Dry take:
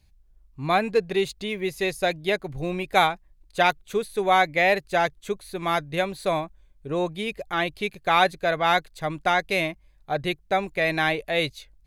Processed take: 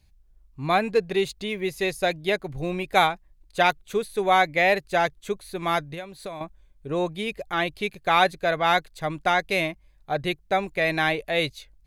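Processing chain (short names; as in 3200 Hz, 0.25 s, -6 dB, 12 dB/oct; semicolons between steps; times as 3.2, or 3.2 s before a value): 5.9–6.41 compressor 5:1, threshold -34 dBFS, peak gain reduction 13.5 dB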